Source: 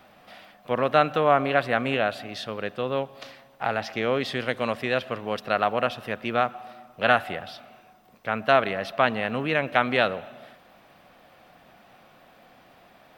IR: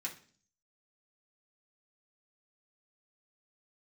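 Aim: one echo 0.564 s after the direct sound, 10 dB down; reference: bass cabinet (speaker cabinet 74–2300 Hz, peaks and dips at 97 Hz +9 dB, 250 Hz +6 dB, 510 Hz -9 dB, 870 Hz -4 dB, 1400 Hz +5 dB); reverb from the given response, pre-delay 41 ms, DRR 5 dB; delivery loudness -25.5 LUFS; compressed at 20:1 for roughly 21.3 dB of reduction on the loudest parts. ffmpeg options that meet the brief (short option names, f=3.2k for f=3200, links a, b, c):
-filter_complex "[0:a]acompressor=threshold=-35dB:ratio=20,aecho=1:1:564:0.316,asplit=2[a][b];[1:a]atrim=start_sample=2205,adelay=41[c];[b][c]afir=irnorm=-1:irlink=0,volume=-5dB[d];[a][d]amix=inputs=2:normalize=0,highpass=f=74:w=0.5412,highpass=f=74:w=1.3066,equalizer=f=97:t=q:w=4:g=9,equalizer=f=250:t=q:w=4:g=6,equalizer=f=510:t=q:w=4:g=-9,equalizer=f=870:t=q:w=4:g=-4,equalizer=f=1.4k:t=q:w=4:g=5,lowpass=f=2.3k:w=0.5412,lowpass=f=2.3k:w=1.3066,volume=15.5dB"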